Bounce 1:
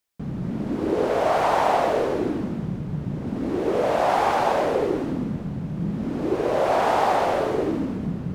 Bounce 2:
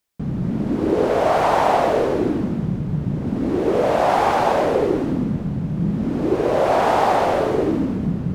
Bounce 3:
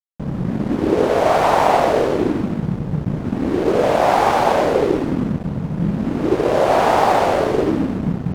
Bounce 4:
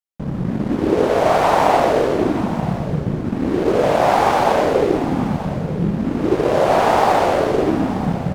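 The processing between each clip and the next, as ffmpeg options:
-af "lowshelf=f=360:g=4,volume=2.5dB"
-af "aeval=exprs='sgn(val(0))*max(abs(val(0))-0.0266,0)':c=same,volume=3.5dB"
-af "aecho=1:1:931:0.211"

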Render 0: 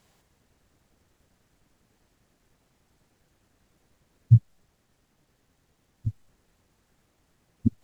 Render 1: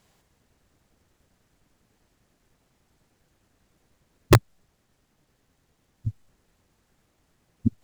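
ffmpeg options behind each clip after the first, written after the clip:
-af "aeval=exprs='(mod(2.24*val(0)+1,2)-1)/2.24':c=same"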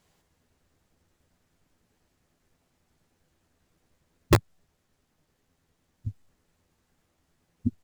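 -filter_complex "[0:a]asplit=2[a][b];[b]adelay=12,volume=-8dB[c];[a][c]amix=inputs=2:normalize=0,volume=-4.5dB"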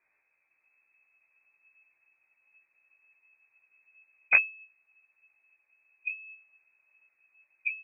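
-filter_complex "[0:a]asplit=2[a][b];[b]adelay=16,volume=-6dB[c];[a][c]amix=inputs=2:normalize=0,asubboost=boost=5.5:cutoff=73,lowpass=f=2.2k:t=q:w=0.5098,lowpass=f=2.2k:t=q:w=0.6013,lowpass=f=2.2k:t=q:w=0.9,lowpass=f=2.2k:t=q:w=2.563,afreqshift=-2600,volume=-6dB"

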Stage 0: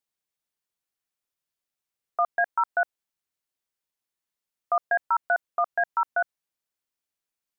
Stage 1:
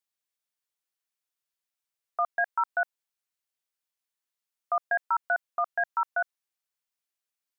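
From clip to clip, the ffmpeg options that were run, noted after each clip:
-af "lowshelf=f=470:g=-10.5,volume=-1dB"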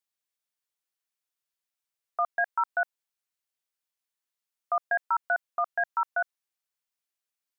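-af anull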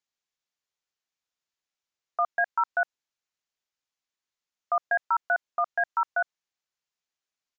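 -af "aresample=16000,aresample=44100,volume=1.5dB"

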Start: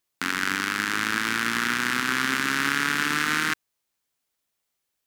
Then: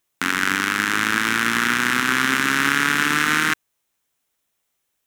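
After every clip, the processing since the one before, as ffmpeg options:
-af "equalizer=f=4.6k:w=4.9:g=-6.5,volume=5.5dB"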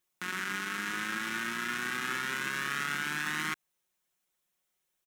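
-af "aecho=1:1:5.5:0.74,alimiter=limit=-11.5dB:level=0:latency=1:release=89,volume=-8.5dB"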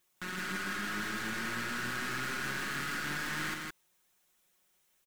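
-filter_complex "[0:a]aeval=exprs='(tanh(141*val(0)+0.2)-tanh(0.2))/141':c=same,asplit=2[a][b];[b]aecho=0:1:164:0.708[c];[a][c]amix=inputs=2:normalize=0,volume=7dB"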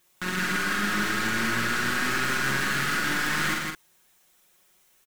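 -filter_complex "[0:a]asplit=2[a][b];[b]adelay=44,volume=-4dB[c];[a][c]amix=inputs=2:normalize=0,volume=8.5dB"

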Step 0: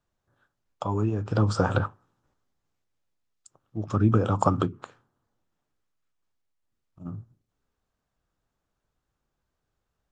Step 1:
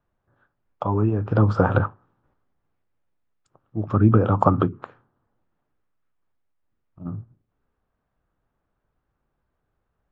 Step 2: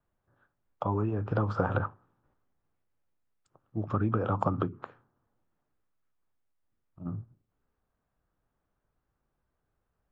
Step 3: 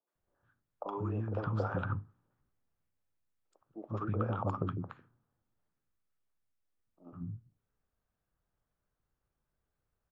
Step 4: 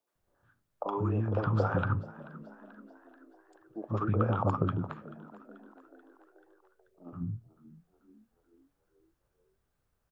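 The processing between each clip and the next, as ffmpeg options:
-af "lowpass=2k,volume=5dB"
-filter_complex "[0:a]acrossover=split=510|2800[a][b][c];[a]acompressor=threshold=-23dB:ratio=4[d];[b]acompressor=threshold=-24dB:ratio=4[e];[c]acompressor=threshold=-52dB:ratio=4[f];[d][e][f]amix=inputs=3:normalize=0,volume=-4.5dB"
-filter_complex "[0:a]acrossover=split=300|910[a][b][c];[c]adelay=70[d];[a]adelay=150[e];[e][b][d]amix=inputs=3:normalize=0,volume=-4dB"
-filter_complex "[0:a]asplit=6[a][b][c][d][e][f];[b]adelay=435,afreqshift=55,volume=-19dB[g];[c]adelay=870,afreqshift=110,volume=-24dB[h];[d]adelay=1305,afreqshift=165,volume=-29.1dB[i];[e]adelay=1740,afreqshift=220,volume=-34.1dB[j];[f]adelay=2175,afreqshift=275,volume=-39.1dB[k];[a][g][h][i][j][k]amix=inputs=6:normalize=0,volume=5.5dB"

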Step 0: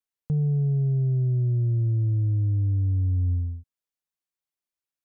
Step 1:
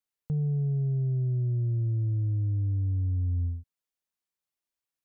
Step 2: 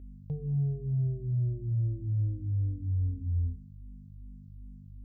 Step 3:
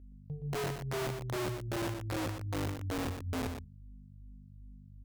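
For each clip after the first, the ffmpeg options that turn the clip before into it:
-af "alimiter=level_in=0.5dB:limit=-24dB:level=0:latency=1,volume=-0.5dB"
-filter_complex "[0:a]aeval=exprs='val(0)+0.00794*(sin(2*PI*50*n/s)+sin(2*PI*2*50*n/s)/2+sin(2*PI*3*50*n/s)/3+sin(2*PI*4*50*n/s)/4+sin(2*PI*5*50*n/s)/5)':c=same,asplit=2[a][b];[b]afreqshift=-2.6[c];[a][c]amix=inputs=2:normalize=1"
-af "aeval=exprs='(mod(17.8*val(0)+1,2)-1)/17.8':c=same,aecho=1:1:120:0.422,volume=-6.5dB"

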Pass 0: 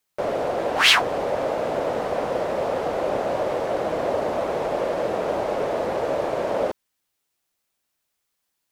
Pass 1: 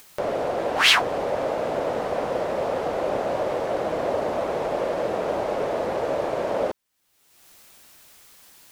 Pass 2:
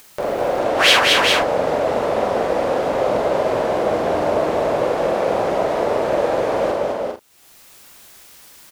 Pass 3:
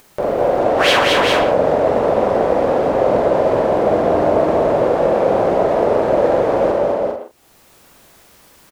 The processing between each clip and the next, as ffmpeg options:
-af "acompressor=mode=upward:threshold=-28dB:ratio=2.5,volume=-1dB"
-filter_complex "[0:a]asplit=2[a][b];[b]adelay=45,volume=-5dB[c];[a][c]amix=inputs=2:normalize=0,asplit=2[d][e];[e]aecho=0:1:206|225|399|432:0.631|0.355|0.596|0.2[f];[d][f]amix=inputs=2:normalize=0,volume=2.5dB"
-filter_complex "[0:a]tiltshelf=f=1.3k:g=5.5,asplit=2[a][b];[b]adelay=120,highpass=300,lowpass=3.4k,asoftclip=type=hard:threshold=-12dB,volume=-8dB[c];[a][c]amix=inputs=2:normalize=0"

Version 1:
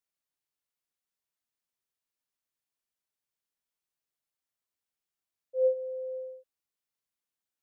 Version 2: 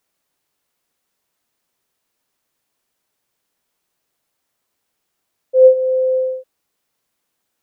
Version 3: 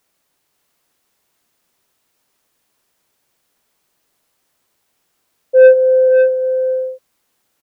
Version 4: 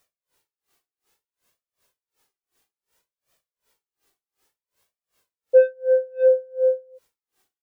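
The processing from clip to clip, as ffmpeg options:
-filter_complex "[0:a]equalizer=f=420:w=0.33:g=5.5,asplit=2[a][b];[b]acompressor=threshold=-30dB:ratio=6,volume=1dB[c];[a][c]amix=inputs=2:normalize=0,volume=9dB"
-filter_complex "[0:a]asoftclip=type=tanh:threshold=-7.5dB,asplit=2[a][b];[b]aecho=0:1:548:0.531[c];[a][c]amix=inputs=2:normalize=0,volume=6dB"
-af "flanger=delay=1.6:depth=1.1:regen=28:speed=0.6:shape=triangular,aeval=exprs='val(0)*pow(10,-33*(0.5-0.5*cos(2*PI*2.7*n/s))/20)':c=same,volume=3dB"

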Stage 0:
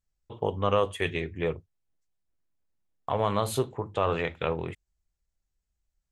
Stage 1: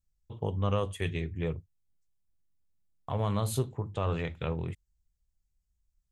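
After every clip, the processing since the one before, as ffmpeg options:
-af "bass=f=250:g=12,treble=f=4k:g=7,volume=-8dB"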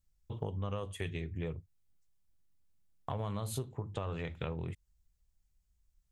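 -af "acompressor=threshold=-38dB:ratio=5,volume=3dB"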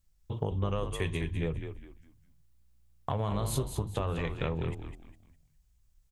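-filter_complex "[0:a]asplit=5[a][b][c][d][e];[b]adelay=204,afreqshift=-60,volume=-7.5dB[f];[c]adelay=408,afreqshift=-120,volume=-17.7dB[g];[d]adelay=612,afreqshift=-180,volume=-27.8dB[h];[e]adelay=816,afreqshift=-240,volume=-38dB[i];[a][f][g][h][i]amix=inputs=5:normalize=0,volume=5.5dB"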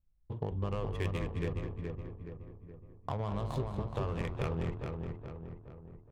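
-filter_complex "[0:a]asplit=2[a][b];[b]adelay=421,lowpass=f=3.3k:p=1,volume=-4.5dB,asplit=2[c][d];[d]adelay=421,lowpass=f=3.3k:p=1,volume=0.52,asplit=2[e][f];[f]adelay=421,lowpass=f=3.3k:p=1,volume=0.52,asplit=2[g][h];[h]adelay=421,lowpass=f=3.3k:p=1,volume=0.52,asplit=2[i][j];[j]adelay=421,lowpass=f=3.3k:p=1,volume=0.52,asplit=2[k][l];[l]adelay=421,lowpass=f=3.3k:p=1,volume=0.52,asplit=2[m][n];[n]adelay=421,lowpass=f=3.3k:p=1,volume=0.52[o];[a][c][e][g][i][k][m][o]amix=inputs=8:normalize=0,adynamicsmooth=sensitivity=7.5:basefreq=1.1k,volume=-4dB"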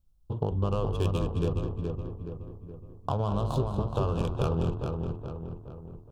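-af "asuperstop=centerf=2000:order=4:qfactor=1.5,volume=7dB"

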